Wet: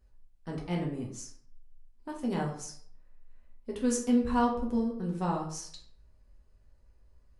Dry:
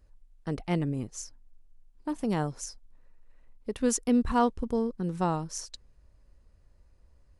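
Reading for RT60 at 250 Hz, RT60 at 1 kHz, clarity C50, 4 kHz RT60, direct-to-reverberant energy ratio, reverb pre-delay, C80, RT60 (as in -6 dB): 0.60 s, 0.55 s, 6.5 dB, 0.40 s, -1.5 dB, 5 ms, 10.0 dB, 0.55 s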